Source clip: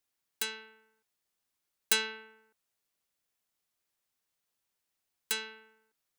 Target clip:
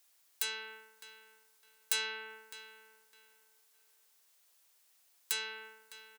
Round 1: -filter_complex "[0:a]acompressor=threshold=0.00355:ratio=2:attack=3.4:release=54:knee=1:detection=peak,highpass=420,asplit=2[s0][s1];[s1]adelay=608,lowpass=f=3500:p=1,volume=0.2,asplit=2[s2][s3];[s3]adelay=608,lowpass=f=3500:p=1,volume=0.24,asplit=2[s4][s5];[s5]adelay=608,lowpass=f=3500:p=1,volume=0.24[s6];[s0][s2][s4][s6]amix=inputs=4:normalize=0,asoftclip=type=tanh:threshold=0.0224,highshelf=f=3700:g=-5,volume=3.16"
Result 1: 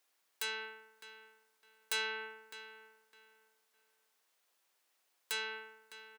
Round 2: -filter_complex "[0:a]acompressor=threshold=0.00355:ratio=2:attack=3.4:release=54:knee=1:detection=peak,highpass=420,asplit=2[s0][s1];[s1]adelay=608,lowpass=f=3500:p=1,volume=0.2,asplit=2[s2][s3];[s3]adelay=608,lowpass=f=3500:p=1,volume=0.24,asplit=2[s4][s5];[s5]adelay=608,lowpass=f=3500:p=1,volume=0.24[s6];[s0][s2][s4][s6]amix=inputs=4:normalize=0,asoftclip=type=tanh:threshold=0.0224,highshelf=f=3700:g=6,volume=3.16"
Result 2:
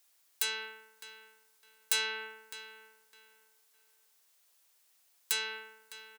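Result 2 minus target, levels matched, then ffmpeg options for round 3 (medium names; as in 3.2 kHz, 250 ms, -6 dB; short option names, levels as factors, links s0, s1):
compression: peak gain reduction -3.5 dB
-filter_complex "[0:a]acompressor=threshold=0.0015:ratio=2:attack=3.4:release=54:knee=1:detection=peak,highpass=420,asplit=2[s0][s1];[s1]adelay=608,lowpass=f=3500:p=1,volume=0.2,asplit=2[s2][s3];[s3]adelay=608,lowpass=f=3500:p=1,volume=0.24,asplit=2[s4][s5];[s5]adelay=608,lowpass=f=3500:p=1,volume=0.24[s6];[s0][s2][s4][s6]amix=inputs=4:normalize=0,asoftclip=type=tanh:threshold=0.0224,highshelf=f=3700:g=6,volume=3.16"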